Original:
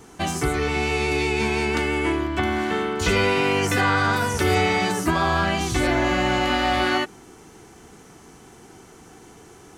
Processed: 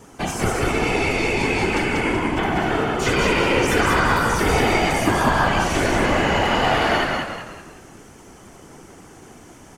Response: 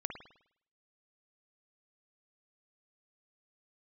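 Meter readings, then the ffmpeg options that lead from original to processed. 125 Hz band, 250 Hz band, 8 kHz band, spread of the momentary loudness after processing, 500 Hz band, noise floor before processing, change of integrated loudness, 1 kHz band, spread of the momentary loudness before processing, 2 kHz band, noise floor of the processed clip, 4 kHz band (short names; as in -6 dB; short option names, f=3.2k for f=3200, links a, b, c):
+1.5 dB, +2.0 dB, +2.0 dB, 5 LU, +2.5 dB, -48 dBFS, +2.0 dB, +3.0 dB, 4 LU, +2.5 dB, -45 dBFS, +1.5 dB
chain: -filter_complex "[0:a]asplit=2[a][b];[1:a]atrim=start_sample=2205,asetrate=35721,aresample=44100[c];[b][c]afir=irnorm=-1:irlink=0,volume=1dB[d];[a][d]amix=inputs=2:normalize=0,aeval=exprs='0.841*(cos(1*acos(clip(val(0)/0.841,-1,1)))-cos(1*PI/2))+0.00668*(cos(6*acos(clip(val(0)/0.841,-1,1)))-cos(6*PI/2))':c=same,afftfilt=real='hypot(re,im)*cos(2*PI*random(0))':imag='hypot(re,im)*sin(2*PI*random(1))':win_size=512:overlap=0.75,equalizer=f=4k:t=o:w=0.21:g=-5.5,asplit=6[e][f][g][h][i][j];[f]adelay=190,afreqshift=-64,volume=-3dB[k];[g]adelay=380,afreqshift=-128,volume=-10.7dB[l];[h]adelay=570,afreqshift=-192,volume=-18.5dB[m];[i]adelay=760,afreqshift=-256,volume=-26.2dB[n];[j]adelay=950,afreqshift=-320,volume=-34dB[o];[e][k][l][m][n][o]amix=inputs=6:normalize=0"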